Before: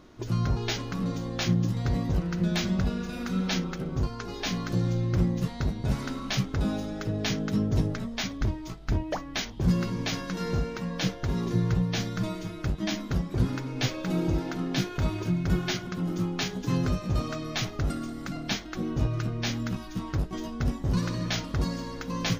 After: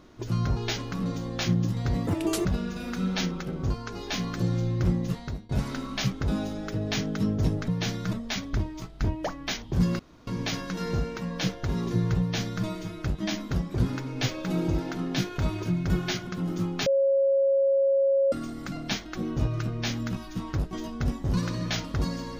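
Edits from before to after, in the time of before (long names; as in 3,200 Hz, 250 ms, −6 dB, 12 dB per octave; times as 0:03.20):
0:02.07–0:02.78: play speed 186%
0:05.27–0:05.82: fade out equal-power, to −22 dB
0:09.87: splice in room tone 0.28 s
0:11.80–0:12.25: duplicate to 0:08.01
0:16.46–0:17.92: beep over 547 Hz −19 dBFS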